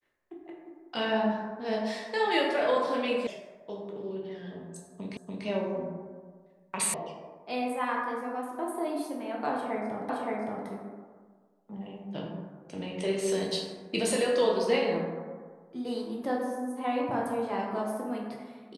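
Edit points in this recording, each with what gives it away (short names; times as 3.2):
3.27 sound cut off
5.17 repeat of the last 0.29 s
6.94 sound cut off
10.09 repeat of the last 0.57 s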